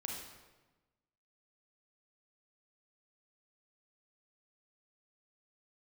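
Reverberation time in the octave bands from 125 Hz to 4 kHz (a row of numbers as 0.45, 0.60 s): 1.4, 1.4, 1.2, 1.1, 1.0, 0.90 s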